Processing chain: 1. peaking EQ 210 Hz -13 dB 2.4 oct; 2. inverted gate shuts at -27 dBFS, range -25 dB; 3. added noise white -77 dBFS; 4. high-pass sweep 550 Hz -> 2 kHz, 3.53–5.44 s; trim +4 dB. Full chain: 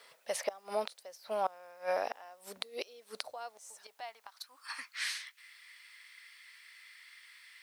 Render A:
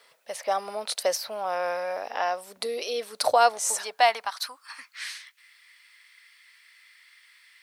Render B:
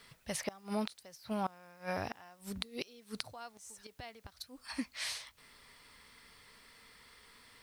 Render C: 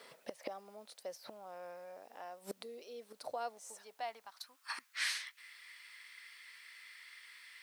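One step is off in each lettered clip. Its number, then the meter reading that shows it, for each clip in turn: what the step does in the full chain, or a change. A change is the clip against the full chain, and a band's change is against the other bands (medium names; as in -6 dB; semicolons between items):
2, momentary loudness spread change -3 LU; 4, 250 Hz band +18.0 dB; 1, 500 Hz band -6.0 dB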